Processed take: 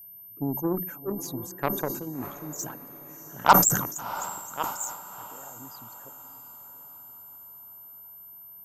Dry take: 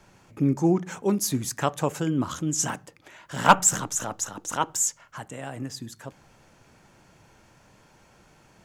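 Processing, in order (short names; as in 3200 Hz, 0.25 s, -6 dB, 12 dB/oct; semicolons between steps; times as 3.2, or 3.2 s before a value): formant sharpening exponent 2; added harmonics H 6 -44 dB, 7 -19 dB, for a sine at -3 dBFS; diffused feedback echo 0.678 s, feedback 50%, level -13.5 dB; whine 13000 Hz -43 dBFS; sustainer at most 75 dB/s; gain -1 dB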